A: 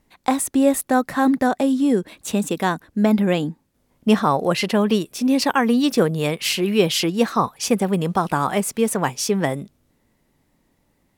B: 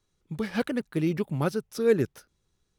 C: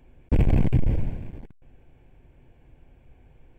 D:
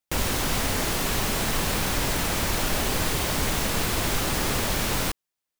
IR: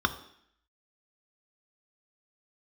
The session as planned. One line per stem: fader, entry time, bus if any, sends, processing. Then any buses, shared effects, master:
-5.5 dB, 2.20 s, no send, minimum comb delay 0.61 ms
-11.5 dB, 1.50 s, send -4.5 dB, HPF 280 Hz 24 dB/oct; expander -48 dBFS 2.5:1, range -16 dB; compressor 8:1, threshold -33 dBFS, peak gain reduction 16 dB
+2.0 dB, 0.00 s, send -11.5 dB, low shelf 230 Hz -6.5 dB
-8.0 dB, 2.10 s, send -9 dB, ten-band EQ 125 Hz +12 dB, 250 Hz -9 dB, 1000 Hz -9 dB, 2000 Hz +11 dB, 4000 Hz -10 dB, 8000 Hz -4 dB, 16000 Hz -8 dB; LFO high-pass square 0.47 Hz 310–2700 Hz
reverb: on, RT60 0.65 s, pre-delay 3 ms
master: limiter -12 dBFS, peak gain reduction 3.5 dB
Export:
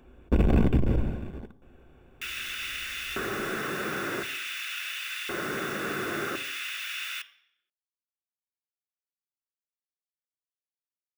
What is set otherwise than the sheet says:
stem A: muted; stem B: muted

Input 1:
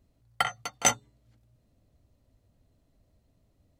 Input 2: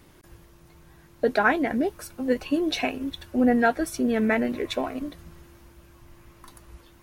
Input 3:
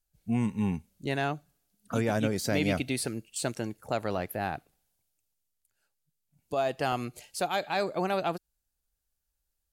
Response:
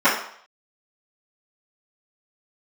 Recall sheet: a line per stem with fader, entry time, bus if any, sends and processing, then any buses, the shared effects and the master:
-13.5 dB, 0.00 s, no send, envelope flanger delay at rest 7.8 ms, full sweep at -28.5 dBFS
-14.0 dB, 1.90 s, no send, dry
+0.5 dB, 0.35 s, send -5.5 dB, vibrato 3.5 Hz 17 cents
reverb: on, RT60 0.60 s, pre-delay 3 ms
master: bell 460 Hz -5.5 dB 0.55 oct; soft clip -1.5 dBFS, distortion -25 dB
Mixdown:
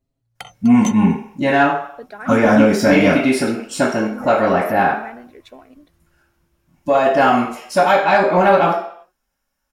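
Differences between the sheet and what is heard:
stem 1 -13.5 dB -> -4.0 dB; stem 2: entry 1.90 s -> 0.75 s; master: missing bell 460 Hz -5.5 dB 0.55 oct

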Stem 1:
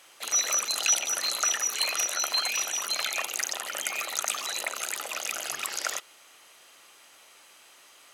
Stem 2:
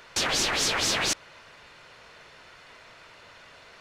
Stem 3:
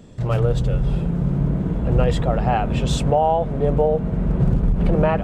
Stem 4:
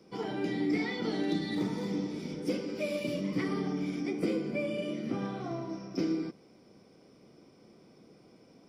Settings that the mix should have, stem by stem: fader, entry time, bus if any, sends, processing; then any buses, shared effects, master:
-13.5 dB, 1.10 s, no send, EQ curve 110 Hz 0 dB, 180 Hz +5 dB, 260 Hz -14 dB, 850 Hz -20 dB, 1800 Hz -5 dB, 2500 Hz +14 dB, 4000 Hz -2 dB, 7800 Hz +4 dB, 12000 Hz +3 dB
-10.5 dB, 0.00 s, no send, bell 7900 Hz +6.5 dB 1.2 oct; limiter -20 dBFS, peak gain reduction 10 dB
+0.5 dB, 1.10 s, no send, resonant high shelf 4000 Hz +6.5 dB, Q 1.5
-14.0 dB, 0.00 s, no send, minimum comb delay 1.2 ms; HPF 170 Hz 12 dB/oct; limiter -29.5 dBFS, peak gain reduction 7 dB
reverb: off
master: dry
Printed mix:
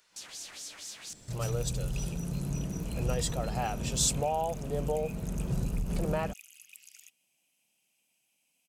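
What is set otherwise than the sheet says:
stem 1 -13.5 dB -> -22.0 dB; master: extra pre-emphasis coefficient 0.8

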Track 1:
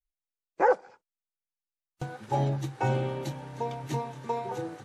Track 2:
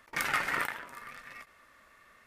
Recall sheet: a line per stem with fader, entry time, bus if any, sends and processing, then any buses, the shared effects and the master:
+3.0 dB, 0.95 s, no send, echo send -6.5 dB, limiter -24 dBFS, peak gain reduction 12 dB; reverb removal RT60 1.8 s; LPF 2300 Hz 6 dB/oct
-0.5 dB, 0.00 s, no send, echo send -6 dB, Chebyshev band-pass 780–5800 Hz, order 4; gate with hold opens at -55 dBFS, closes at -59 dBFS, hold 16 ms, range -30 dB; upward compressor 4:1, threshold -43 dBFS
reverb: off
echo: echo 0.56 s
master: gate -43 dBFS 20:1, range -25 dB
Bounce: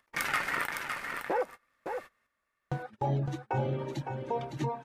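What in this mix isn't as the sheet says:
stem 1: entry 0.95 s -> 0.70 s; stem 2: missing Chebyshev band-pass 780–5800 Hz, order 4

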